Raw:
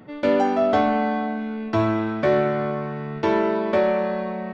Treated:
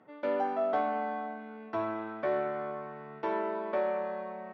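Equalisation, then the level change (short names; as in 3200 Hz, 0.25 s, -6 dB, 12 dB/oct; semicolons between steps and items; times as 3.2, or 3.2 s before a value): band-pass 920 Hz, Q 0.75; -8.5 dB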